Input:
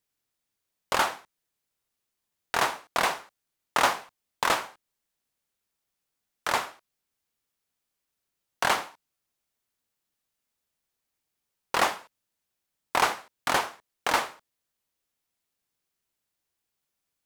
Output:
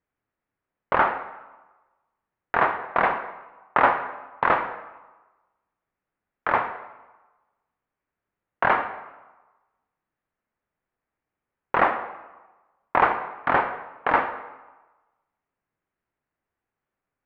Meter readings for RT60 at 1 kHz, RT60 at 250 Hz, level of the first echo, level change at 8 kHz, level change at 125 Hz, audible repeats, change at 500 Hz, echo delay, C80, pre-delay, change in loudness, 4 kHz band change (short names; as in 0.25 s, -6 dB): 1.2 s, 1.1 s, none, under -35 dB, +5.5 dB, none, +5.5 dB, none, 12.0 dB, 21 ms, +3.5 dB, -12.0 dB